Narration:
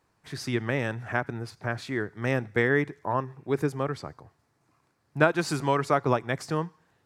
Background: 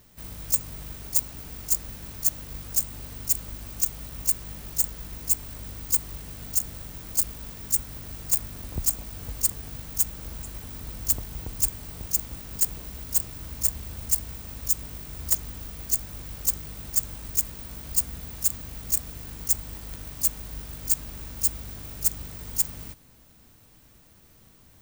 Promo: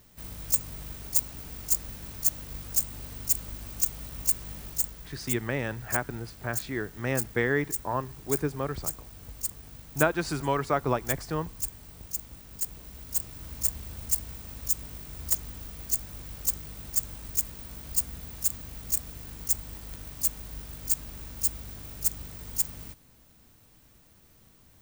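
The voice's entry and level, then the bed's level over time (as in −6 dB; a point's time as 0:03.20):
4.80 s, −2.5 dB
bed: 0:04.62 −1.5 dB
0:05.17 −8.5 dB
0:12.57 −8.5 dB
0:13.55 −3 dB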